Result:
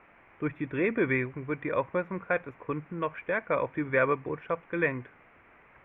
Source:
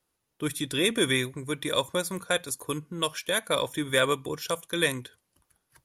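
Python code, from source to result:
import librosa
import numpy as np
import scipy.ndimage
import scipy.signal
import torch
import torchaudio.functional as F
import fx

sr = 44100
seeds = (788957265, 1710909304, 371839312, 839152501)

y = fx.quant_dither(x, sr, seeds[0], bits=8, dither='triangular')
y = scipy.signal.sosfilt(scipy.signal.ellip(4, 1.0, 50, 2300.0, 'lowpass', fs=sr, output='sos'), y)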